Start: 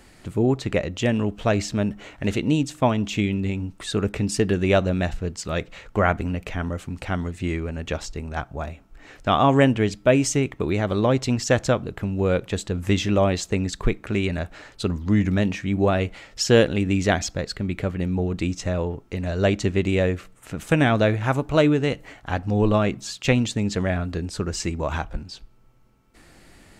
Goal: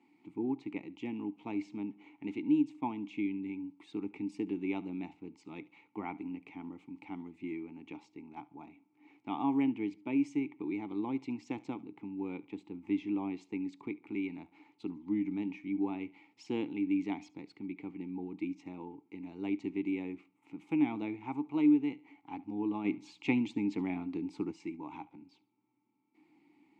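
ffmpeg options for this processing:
ffmpeg -i in.wav -filter_complex "[0:a]asplit=3[link_01][link_02][link_03];[link_01]bandpass=frequency=300:width_type=q:width=8,volume=0dB[link_04];[link_02]bandpass=frequency=870:width_type=q:width=8,volume=-6dB[link_05];[link_03]bandpass=frequency=2240:width_type=q:width=8,volume=-9dB[link_06];[link_04][link_05][link_06]amix=inputs=3:normalize=0,asplit=2[link_07][link_08];[link_08]aecho=0:1:71|142:0.0794|0.0238[link_09];[link_07][link_09]amix=inputs=2:normalize=0,asplit=3[link_10][link_11][link_12];[link_10]afade=type=out:start_time=22.84:duration=0.02[link_13];[link_11]acontrast=65,afade=type=in:start_time=22.84:duration=0.02,afade=type=out:start_time=24.51:duration=0.02[link_14];[link_12]afade=type=in:start_time=24.51:duration=0.02[link_15];[link_13][link_14][link_15]amix=inputs=3:normalize=0,highpass=frequency=110:width=0.5412,highpass=frequency=110:width=1.3066,asettb=1/sr,asplit=3[link_16][link_17][link_18];[link_16]atrim=end=12.414[link_19];[link_17]atrim=start=12.41:end=13.41,asetpts=PTS-STARTPTS,afade=type=in:duration=0.004:curve=qsin,afade=type=out:start_time=0.996:duration=0.004:curve=qsin,highshelf=frequency=5000:gain=-8.5[link_20];[link_18]atrim=start=13.406[link_21];[link_19][link_20]acrossfade=duration=0.004:curve1=hsin:curve2=qsin[link_22];[link_22][link_21]acrossfade=duration=0.004:curve1=qsin:curve2=hsin,volume=-3.5dB" out.wav

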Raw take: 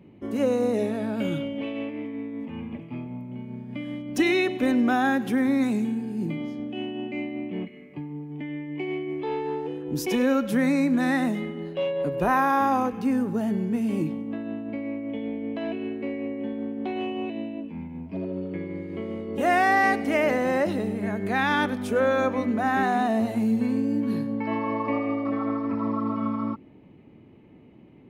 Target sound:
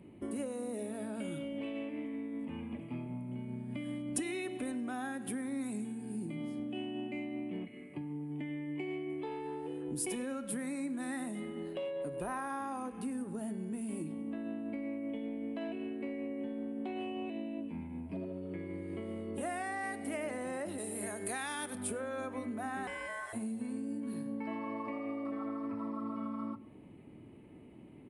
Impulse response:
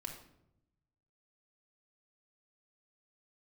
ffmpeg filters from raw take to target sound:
-filter_complex "[0:a]asettb=1/sr,asplit=3[link_01][link_02][link_03];[link_01]atrim=end=20.784[link_04];[link_02]atrim=start=20.78:end=21.75,asetpts=PTS-STARTPTS,afade=type=in:duration=0.004:curve=qsin,afade=type=out:start_time=0.966:duration=0.004:curve=qsin,bass=frequency=250:gain=-8,treble=frequency=4000:gain=12[link_05];[link_03]atrim=start=21.746[link_06];[link_04][link_05]acrossfade=duration=0.004:curve1=hsin:curve2=qsin[link_07];[link_07][link_06]acrossfade=duration=0.004:curve1=qsin:curve2=hsin,acompressor=threshold=-34dB:ratio=6,aexciter=amount=14.8:drive=5.2:freq=8700,asettb=1/sr,asplit=3[link_08][link_09][link_10];[link_08]atrim=end=22.874[link_11];[link_09]atrim=start=22.87:end=23.33,asetpts=PTS-STARTPTS,afade=type=in:duration=0.004:curve=qsin,afade=type=out:start_time=0.456:duration=0.004:curve=qsin,aeval=exprs='val(0)*sin(2*PI*1300*n/s)':channel_layout=same[link_12];[link_10]atrim=start=23.326[link_13];[link_11][link_12]acrossfade=duration=0.004:curve1=hsin:curve2=qsin[link_14];[link_14][link_13]acrossfade=duration=0.004:curve1=qsin:curve2=hsin,asplit=2[link_15][link_16];[1:a]atrim=start_sample=2205[link_17];[link_16][link_17]afir=irnorm=-1:irlink=0,volume=-7dB[link_18];[link_15][link_18]amix=inputs=2:normalize=0,aresample=22050,aresample=44100,volume=-5dB"

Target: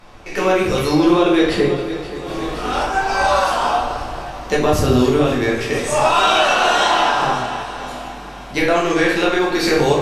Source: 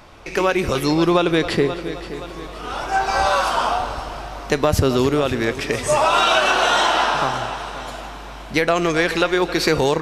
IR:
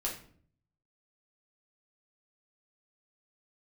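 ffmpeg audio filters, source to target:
-filter_complex "[0:a]asettb=1/sr,asplit=3[link_01][link_02][link_03];[link_01]atrim=end=2.264[link_04];[link_02]atrim=start=2.26:end=2.83,asetpts=PTS-STARTPTS,afade=type=in:duration=0.004:curve=qsin,afade=type=out:start_time=0.566:duration=0.004:curve=qsin,acontrast=63[link_05];[link_03]atrim=start=2.826[link_06];[link_04][link_05]acrossfade=duration=0.004:curve1=hsin:curve2=qsin[link_07];[link_07][link_06]acrossfade=duration=0.004:curve1=qsin:curve2=hsin[link_08];[1:a]atrim=start_sample=2205,afade=type=out:start_time=0.19:duration=0.01,atrim=end_sample=8820,asetrate=27342,aresample=44100[link_09];[link_08][link_09]afir=irnorm=-1:irlink=0,volume=-4.5dB"

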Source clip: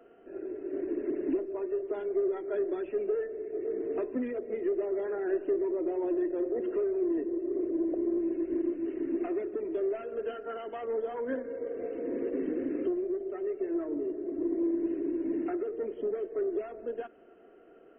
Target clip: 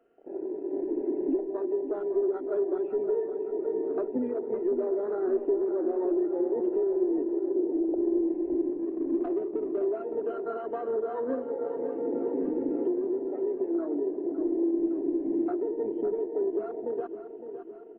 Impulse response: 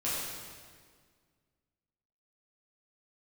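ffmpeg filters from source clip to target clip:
-filter_complex "[0:a]afwtdn=0.00891,asplit=2[link_01][link_02];[link_02]acompressor=threshold=-39dB:ratio=6,volume=0dB[link_03];[link_01][link_03]amix=inputs=2:normalize=0,asplit=3[link_04][link_05][link_06];[link_04]afade=type=out:start_time=7.52:duration=0.02[link_07];[link_05]asuperstop=centerf=1800:order=4:qfactor=0.53,afade=type=in:start_time=7.52:duration=0.02,afade=type=out:start_time=7.99:duration=0.02[link_08];[link_06]afade=type=in:start_time=7.99:duration=0.02[link_09];[link_07][link_08][link_09]amix=inputs=3:normalize=0,asettb=1/sr,asplit=3[link_10][link_11][link_12];[link_10]atrim=end=8.724[link_13];[link_11]atrim=start=8.72:end=9.85,asetpts=PTS-STARTPTS,afade=type=in:duration=0.004:curve=qsin,afade=type=out:start_time=1.126:duration=0.004:curve=qsin,adynamicsmooth=sensitivity=2.5:basefreq=1400[link_14];[link_12]atrim=start=9.846[link_15];[link_13][link_14]acrossfade=duration=0.004:curve1=hsin:curve2=qsin[link_16];[link_16][link_15]acrossfade=duration=0.004:curve1=qsin:curve2=hsin,asplit=2[link_17][link_18];[link_18]aecho=0:1:561|1122|1683|2244|2805|3366|3927:0.316|0.18|0.103|0.0586|0.0334|0.019|0.0108[link_19];[link_17][link_19]amix=inputs=2:normalize=0"

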